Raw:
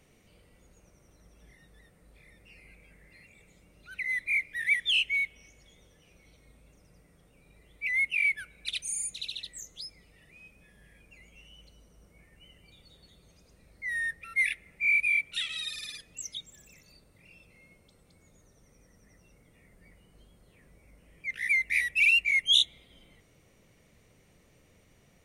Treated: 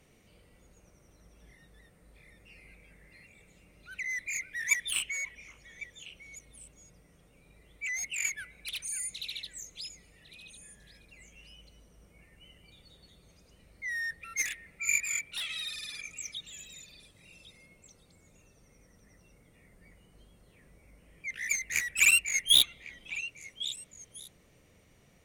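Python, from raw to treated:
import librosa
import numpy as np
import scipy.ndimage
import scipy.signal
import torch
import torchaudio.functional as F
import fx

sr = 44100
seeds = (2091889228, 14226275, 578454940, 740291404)

y = fx.cheby_harmonics(x, sr, harmonics=(7,), levels_db=(-11,), full_scale_db=-11.5)
y = fx.echo_stepped(y, sr, ms=551, hz=1100.0, octaves=1.4, feedback_pct=70, wet_db=-11.0)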